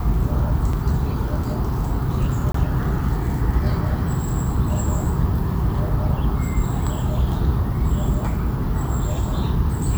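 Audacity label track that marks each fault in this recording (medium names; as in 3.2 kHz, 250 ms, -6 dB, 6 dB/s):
0.730000	0.730000	dropout 3.5 ms
2.520000	2.540000	dropout 24 ms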